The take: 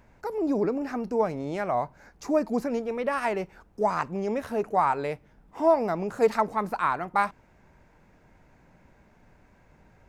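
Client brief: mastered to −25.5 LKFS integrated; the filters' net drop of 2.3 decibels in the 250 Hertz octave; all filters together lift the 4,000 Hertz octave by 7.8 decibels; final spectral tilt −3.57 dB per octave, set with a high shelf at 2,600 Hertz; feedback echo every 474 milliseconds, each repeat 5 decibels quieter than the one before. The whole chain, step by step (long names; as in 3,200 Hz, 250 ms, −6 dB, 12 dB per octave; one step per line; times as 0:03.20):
parametric band 250 Hz −3 dB
high-shelf EQ 2,600 Hz +6 dB
parametric band 4,000 Hz +4.5 dB
repeating echo 474 ms, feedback 56%, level −5 dB
level +1 dB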